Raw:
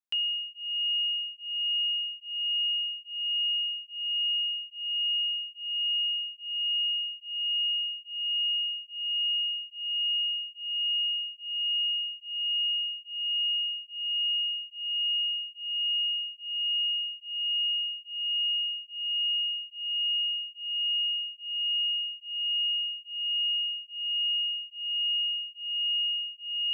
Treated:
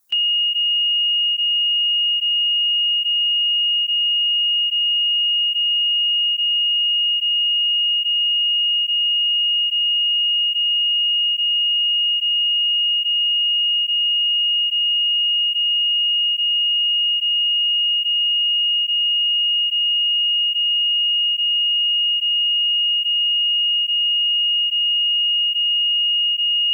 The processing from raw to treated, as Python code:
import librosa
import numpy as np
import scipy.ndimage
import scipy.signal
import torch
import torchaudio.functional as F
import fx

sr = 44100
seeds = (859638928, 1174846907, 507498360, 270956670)

y = fx.bin_expand(x, sr, power=1.5)
y = fx.dynamic_eq(y, sr, hz=2700.0, q=2.4, threshold_db=-42.0, ratio=4.0, max_db=7)
y = fx.env_flatten(y, sr, amount_pct=100)
y = y * librosa.db_to_amplitude(3.0)